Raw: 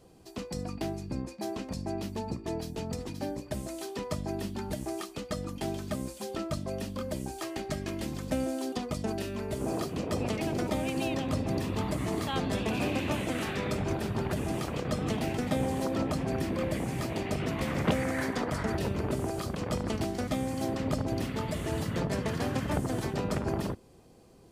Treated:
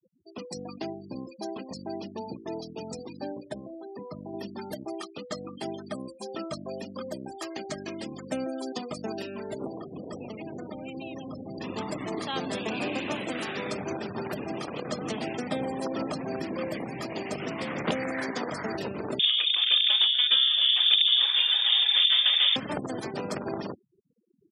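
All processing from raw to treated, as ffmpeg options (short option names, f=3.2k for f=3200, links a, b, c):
-filter_complex "[0:a]asettb=1/sr,asplit=3[a][b][c];[a]atrim=end=3.544[d];[b]atrim=start=3.54:end=4.34,asetpts=PTS-STARTPTS,afade=t=in:d=0.004:c=qsin,afade=t=out:st=0.796:d=0.004:c=qsin,highshelf=f=2.5k:g=-10,acrossover=split=260|3000[e][f][g];[f]acompressor=threshold=-39dB:ratio=4:attack=3.2:release=140:knee=2.83:detection=peak[h];[e][h][g]amix=inputs=3:normalize=0[i];[c]atrim=start=4.336[j];[d][i]acrossfade=d=0.004:c1=hsin:c2=qsin[k];[k][j]acrossfade=d=0.004:c1=qsin:c2=hsin,asettb=1/sr,asplit=3[l][m][n];[l]atrim=end=9.664[o];[m]atrim=start=9.66:end=11.61,asetpts=PTS-STARTPTS,afade=t=in:d=0.004:c=qsin,afade=t=out:st=1.946:d=0.004:c=qsin,acrossover=split=93|6200[p][q][r];[p]acompressor=threshold=-51dB:ratio=4[s];[q]acompressor=threshold=-38dB:ratio=4[t];[r]acompressor=threshold=-52dB:ratio=4[u];[s][t][u]amix=inputs=3:normalize=0,lowshelf=f=200:g=8[v];[n]atrim=start=11.606[w];[o][v]acrossfade=d=0.004:c1=hsin:c2=qsin[x];[x][w]acrossfade=d=0.004:c1=qsin:c2=hsin,asettb=1/sr,asplit=3[y][z][aa];[y]atrim=end=19.194[ab];[z]atrim=start=19.19:end=22.56,asetpts=PTS-STARTPTS,afade=t=in:d=0.004:c=qsin,afade=t=out:st=3.366:d=0.004:c=qsin,acontrast=37,aecho=1:1:541:0.0631,atrim=end_sample=148617,lowpass=f=3.1k:t=q:w=0.5098,lowpass=f=3.1k:t=q:w=0.6013,lowpass=f=3.1k:t=q:w=0.9,lowpass=f=3.1k:t=q:w=2.563,afreqshift=-3700[ac];[aa]atrim=start=22.556[ad];[ab][ac]acrossfade=d=0.004:c1=hsin:c2=qsin[ae];[ae][ad]acrossfade=d=0.004:c1=qsin:c2=hsin,afftfilt=real='re*gte(hypot(re,im),0.01)':imag='im*gte(hypot(re,im),0.01)':win_size=1024:overlap=0.75,highpass=210,highshelf=f=3.4k:g=7"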